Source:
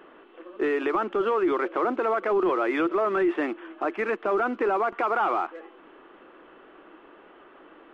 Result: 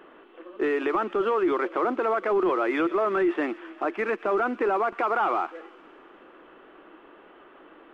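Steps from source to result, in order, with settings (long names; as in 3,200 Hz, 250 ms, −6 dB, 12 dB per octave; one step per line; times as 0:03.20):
delay with a high-pass on its return 121 ms, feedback 73%, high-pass 2,800 Hz, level −14 dB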